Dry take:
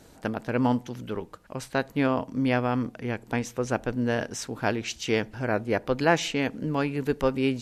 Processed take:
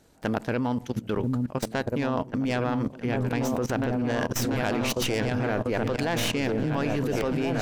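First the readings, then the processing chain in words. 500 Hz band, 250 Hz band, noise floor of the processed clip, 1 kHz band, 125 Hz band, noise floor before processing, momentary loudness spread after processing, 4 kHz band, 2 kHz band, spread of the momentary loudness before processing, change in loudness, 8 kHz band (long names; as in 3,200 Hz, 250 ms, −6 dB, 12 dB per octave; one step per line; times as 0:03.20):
−0.5 dB, +0.5 dB, −44 dBFS, −1.0 dB, +2.5 dB, −53 dBFS, 3 LU, +2.0 dB, −1.0 dB, 9 LU, +0.5 dB, +2.5 dB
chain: stylus tracing distortion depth 0.095 ms
echo whose low-pass opens from repeat to repeat 690 ms, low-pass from 200 Hz, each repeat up 2 octaves, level −3 dB
output level in coarse steps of 17 dB
level +8 dB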